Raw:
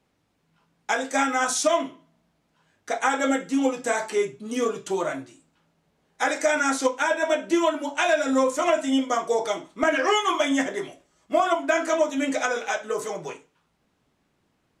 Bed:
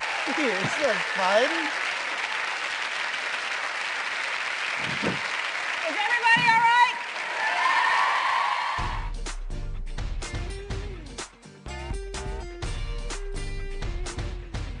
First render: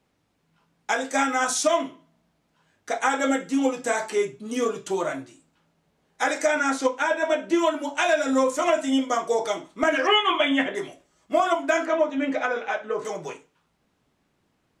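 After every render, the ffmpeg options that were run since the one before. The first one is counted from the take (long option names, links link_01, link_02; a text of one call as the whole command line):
ffmpeg -i in.wav -filter_complex "[0:a]asettb=1/sr,asplit=3[link_01][link_02][link_03];[link_01]atrim=end=6.474[link_04];[link_02]atrim=start=6.47:end=7.59,asetpts=PTS-STARTPTS,afade=type=in:duration=0.004:curve=qsin,afade=type=out:start_time=1.116:duration=0.004:curve=qsin,highshelf=frequency=5900:gain=-8[link_05];[link_03]atrim=start=7.586[link_06];[link_04][link_05]acrossfade=duration=0.004:curve1=hsin:curve2=qsin[link_07];[link_07][link_06]acrossfade=duration=0.004:curve1=qsin:curve2=hsin,asettb=1/sr,asplit=3[link_08][link_09][link_10];[link_08]atrim=end=10.074[link_11];[link_09]atrim=start=10.07:end=10.75,asetpts=PTS-STARTPTS,afade=type=in:duration=0.004:curve=qsin,afade=type=out:start_time=0.676:duration=0.004:curve=qsin,highshelf=frequency=4100:width_type=q:width=3:gain=-11[link_12];[link_10]atrim=start=10.746[link_13];[link_11][link_12]acrossfade=duration=0.004:curve1=hsin:curve2=qsin[link_14];[link_14][link_13]acrossfade=duration=0.004:curve1=qsin:curve2=hsin,asettb=1/sr,asplit=3[link_15][link_16][link_17];[link_15]atrim=end=11.854[link_18];[link_16]atrim=start=11.85:end=13.05,asetpts=PTS-STARTPTS,afade=type=in:duration=0.004:curve=qsin,afade=type=out:start_time=1.196:duration=0.004:curve=qsin,lowpass=2700[link_19];[link_17]atrim=start=13.046[link_20];[link_18][link_19]acrossfade=duration=0.004:curve1=hsin:curve2=qsin[link_21];[link_21][link_20]acrossfade=duration=0.004:curve1=qsin:curve2=hsin" out.wav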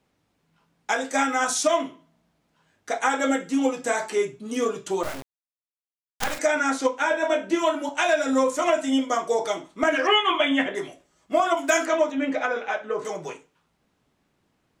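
ffmpeg -i in.wav -filter_complex "[0:a]asettb=1/sr,asplit=3[link_01][link_02][link_03];[link_01]atrim=end=5.034[link_04];[link_02]atrim=start=5.03:end=6.39,asetpts=PTS-STARTPTS,afade=type=in:duration=0.004:curve=qsin,afade=type=out:start_time=1.356:duration=0.004:curve=qsin,acrusher=bits=3:dc=4:mix=0:aa=0.000001[link_05];[link_03]atrim=start=6.386[link_06];[link_04][link_05]acrossfade=duration=0.004:curve1=hsin:curve2=qsin[link_07];[link_07][link_06]acrossfade=duration=0.004:curve1=qsin:curve2=hsin,asettb=1/sr,asplit=3[link_08][link_09][link_10];[link_08]atrim=end=6.994[link_11];[link_09]atrim=start=6.99:end=7.89,asetpts=PTS-STARTPTS,afade=type=in:duration=0.004:curve=qsin,afade=type=out:start_time=0.896:duration=0.004:curve=qsin,asplit=2[link_12][link_13];[link_13]adelay=25,volume=-8dB[link_14];[link_12][link_14]amix=inputs=2:normalize=0,atrim=end_sample=39690[link_15];[link_10]atrim=start=7.886[link_16];[link_11][link_15]acrossfade=duration=0.004:curve1=hsin:curve2=qsin[link_17];[link_17][link_16]acrossfade=duration=0.004:curve1=qsin:curve2=hsin,asettb=1/sr,asplit=3[link_18][link_19][link_20];[link_18]atrim=end=11.574[link_21];[link_19]atrim=start=11.57:end=12.12,asetpts=PTS-STARTPTS,afade=type=in:duration=0.004:curve=qsin,afade=type=out:start_time=0.546:duration=0.004:curve=qsin,aemphasis=mode=production:type=75kf[link_22];[link_20]atrim=start=12.116[link_23];[link_21][link_22]acrossfade=duration=0.004:curve1=hsin:curve2=qsin[link_24];[link_24][link_23]acrossfade=duration=0.004:curve1=qsin:curve2=hsin" out.wav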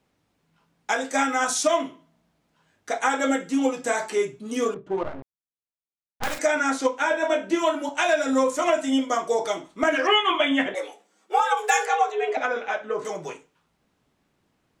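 ffmpeg -i in.wav -filter_complex "[0:a]asettb=1/sr,asplit=3[link_01][link_02][link_03];[link_01]atrim=end=4.744[link_04];[link_02]atrim=start=4.74:end=6.24,asetpts=PTS-STARTPTS,afade=type=in:duration=0.004:curve=qsin,afade=type=out:start_time=1.496:duration=0.004:curve=qsin,adynamicsmooth=sensitivity=1:basefreq=700[link_05];[link_03]atrim=start=6.236[link_06];[link_04][link_05]acrossfade=duration=0.004:curve1=hsin:curve2=qsin[link_07];[link_07][link_06]acrossfade=duration=0.004:curve1=qsin:curve2=hsin,asettb=1/sr,asplit=3[link_08][link_09][link_10];[link_08]atrim=end=10.744[link_11];[link_09]atrim=start=10.74:end=12.37,asetpts=PTS-STARTPTS,afade=type=in:duration=0.004:curve=qsin,afade=type=out:start_time=1.626:duration=0.004:curve=qsin,afreqshift=150[link_12];[link_10]atrim=start=12.366[link_13];[link_11][link_12]acrossfade=duration=0.004:curve1=hsin:curve2=qsin[link_14];[link_14][link_13]acrossfade=duration=0.004:curve1=qsin:curve2=hsin" out.wav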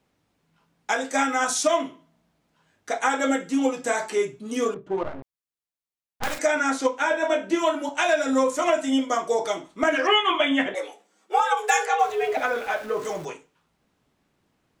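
ffmpeg -i in.wav -filter_complex "[0:a]asettb=1/sr,asplit=3[link_01][link_02][link_03];[link_01]atrim=end=11.994[link_04];[link_02]atrim=start=11.99:end=13.25,asetpts=PTS-STARTPTS,afade=type=in:duration=0.004:curve=qsin,afade=type=out:start_time=1.256:duration=0.004:curve=qsin,aeval=exprs='val(0)+0.5*0.0126*sgn(val(0))':channel_layout=same[link_05];[link_03]atrim=start=13.246[link_06];[link_04][link_05]acrossfade=duration=0.004:curve1=hsin:curve2=qsin[link_07];[link_07][link_06]acrossfade=duration=0.004:curve1=qsin:curve2=hsin" out.wav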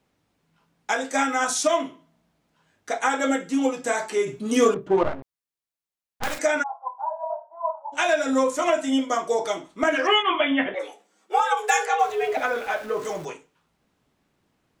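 ffmpeg -i in.wav -filter_complex "[0:a]asplit=3[link_01][link_02][link_03];[link_01]afade=type=out:start_time=4.26:duration=0.02[link_04];[link_02]acontrast=77,afade=type=in:start_time=4.26:duration=0.02,afade=type=out:start_time=5.13:duration=0.02[link_05];[link_03]afade=type=in:start_time=5.13:duration=0.02[link_06];[link_04][link_05][link_06]amix=inputs=3:normalize=0,asplit=3[link_07][link_08][link_09];[link_07]afade=type=out:start_time=6.62:duration=0.02[link_10];[link_08]asuperpass=centerf=830:order=8:qfactor=2.2,afade=type=in:start_time=6.62:duration=0.02,afade=type=out:start_time=7.92:duration=0.02[link_11];[link_09]afade=type=in:start_time=7.92:duration=0.02[link_12];[link_10][link_11][link_12]amix=inputs=3:normalize=0,asplit=3[link_13][link_14][link_15];[link_13]afade=type=out:start_time=10.22:duration=0.02[link_16];[link_14]lowpass=frequency=3300:width=0.5412,lowpass=frequency=3300:width=1.3066,afade=type=in:start_time=10.22:duration=0.02,afade=type=out:start_time=10.79:duration=0.02[link_17];[link_15]afade=type=in:start_time=10.79:duration=0.02[link_18];[link_16][link_17][link_18]amix=inputs=3:normalize=0" out.wav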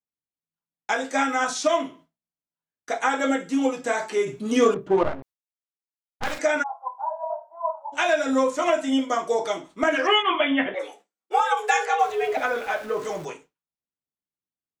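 ffmpeg -i in.wav -filter_complex "[0:a]acrossover=split=6300[link_01][link_02];[link_02]acompressor=threshold=-46dB:ratio=4:attack=1:release=60[link_03];[link_01][link_03]amix=inputs=2:normalize=0,agate=range=-33dB:threshold=-44dB:ratio=3:detection=peak" out.wav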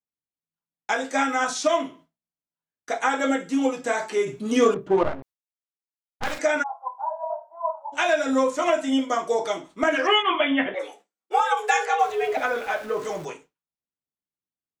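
ffmpeg -i in.wav -af anull out.wav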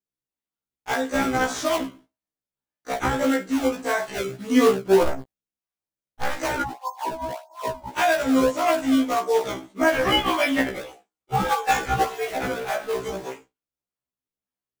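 ffmpeg -i in.wav -filter_complex "[0:a]asplit=2[link_01][link_02];[link_02]acrusher=samples=28:mix=1:aa=0.000001:lfo=1:lforange=44.8:lforate=1.7,volume=-4dB[link_03];[link_01][link_03]amix=inputs=2:normalize=0,afftfilt=real='re*1.73*eq(mod(b,3),0)':imag='im*1.73*eq(mod(b,3),0)':win_size=2048:overlap=0.75" out.wav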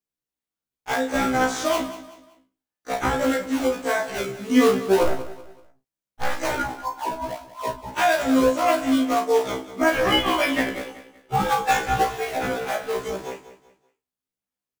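ffmpeg -i in.wav -filter_complex "[0:a]asplit=2[link_01][link_02];[link_02]adelay=35,volume=-8dB[link_03];[link_01][link_03]amix=inputs=2:normalize=0,aecho=1:1:190|380|570:0.188|0.0659|0.0231" out.wav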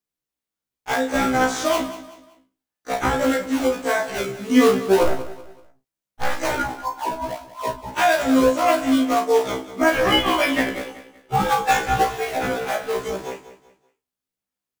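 ffmpeg -i in.wav -af "volume=2dB" out.wav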